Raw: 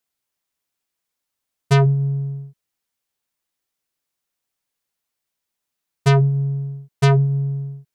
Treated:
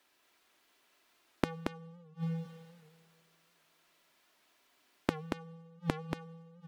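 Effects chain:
downward compressor 6 to 1, threshold −21 dBFS, peak gain reduction 8.5 dB
four-comb reverb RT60 2.3 s, combs from 32 ms, DRR 13 dB
speed change +19%
gate with flip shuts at −27 dBFS, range −30 dB
three-way crossover with the lows and the highs turned down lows −14 dB, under 200 Hz, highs −12 dB, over 4,200 Hz
comb filter 3 ms, depth 31%
on a send: single-tap delay 228 ms −5 dB
on the sum: wow of a warped record 78 rpm, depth 100 cents
level +16 dB

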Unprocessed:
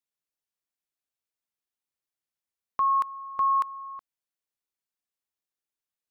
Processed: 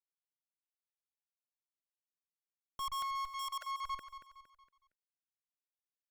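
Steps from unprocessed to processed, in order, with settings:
time-frequency cells dropped at random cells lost 39%
in parallel at −2.5 dB: downward compressor 12 to 1, threshold −34 dBFS, peak gain reduction 12.5 dB
on the sum: bit reduction 11 bits
tube saturation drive 42 dB, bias 0.65
brickwall limiter −46 dBFS, peak gain reduction 8 dB
0:03.31–0:03.84: Butterworth high-pass 510 Hz 96 dB per octave
on a send: repeating echo 231 ms, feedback 41%, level −11.5 dB
on the sum: level +10.5 dB

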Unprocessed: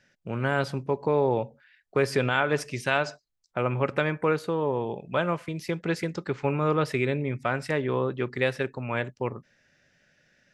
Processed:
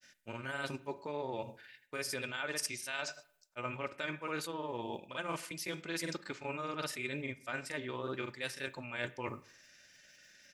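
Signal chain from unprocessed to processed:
first-order pre-emphasis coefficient 0.9
comb filter 3.3 ms, depth 31%
reversed playback
downward compressor 6 to 1, threshold −50 dBFS, peak gain reduction 17.5 dB
reversed playback
granular cloud, spray 37 ms, pitch spread up and down by 0 semitones
on a send: convolution reverb RT60 0.60 s, pre-delay 38 ms, DRR 16.5 dB
on the sum: level +15 dB

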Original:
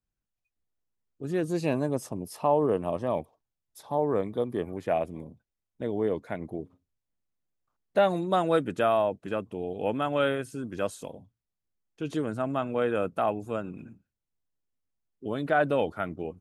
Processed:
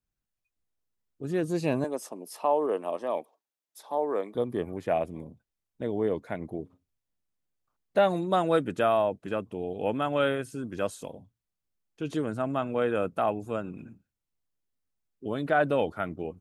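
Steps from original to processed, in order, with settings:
0:01.84–0:04.35: Bessel high-pass filter 380 Hz, order 4

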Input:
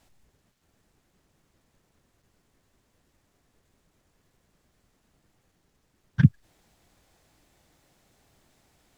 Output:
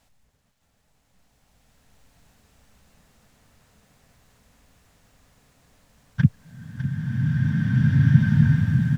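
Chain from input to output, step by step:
parametric band 350 Hz −14.5 dB 0.29 octaves
on a send: single-tap delay 604 ms −10.5 dB
on the sum: slow-attack reverb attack 2,160 ms, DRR −10 dB

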